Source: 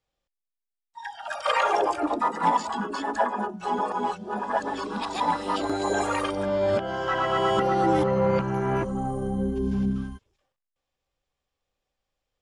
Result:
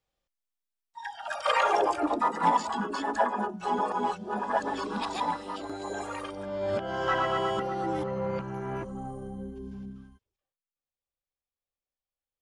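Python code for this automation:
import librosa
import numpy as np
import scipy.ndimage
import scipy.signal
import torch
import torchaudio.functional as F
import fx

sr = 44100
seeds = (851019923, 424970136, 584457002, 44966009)

y = fx.gain(x, sr, db=fx.line((5.09, -1.5), (5.52, -10.0), (6.47, -10.0), (7.09, 0.0), (7.7, -9.0), (9.08, -9.0), (9.97, -17.0)))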